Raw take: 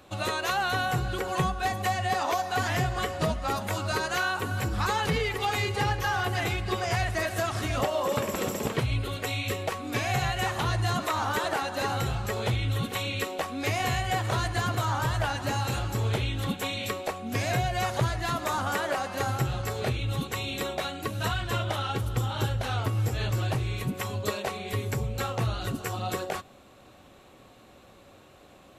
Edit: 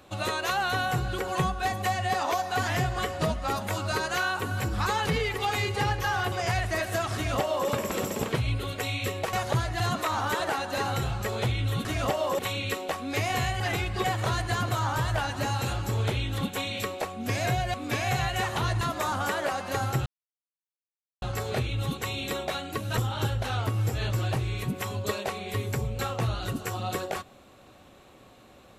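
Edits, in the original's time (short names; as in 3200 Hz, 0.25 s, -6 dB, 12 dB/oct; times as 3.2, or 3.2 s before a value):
6.32–6.76 move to 14.1
7.59–8.13 copy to 12.89
9.77–10.84 swap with 17.8–18.27
19.52 insert silence 1.16 s
21.27–22.16 cut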